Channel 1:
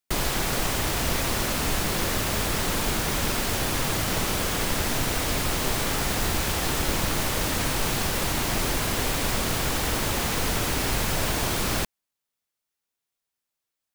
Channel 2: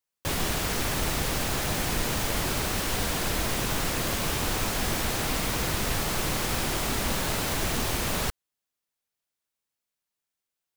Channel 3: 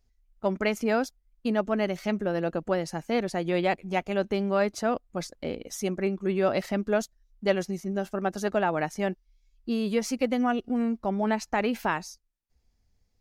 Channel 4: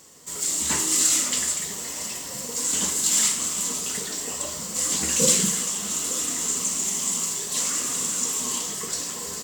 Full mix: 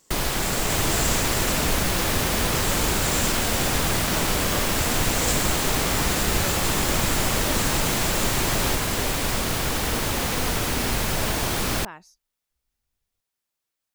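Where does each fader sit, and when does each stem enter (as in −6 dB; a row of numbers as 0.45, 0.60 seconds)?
+1.0, +0.5, −13.0, −10.0 decibels; 0.00, 0.45, 0.00, 0.00 seconds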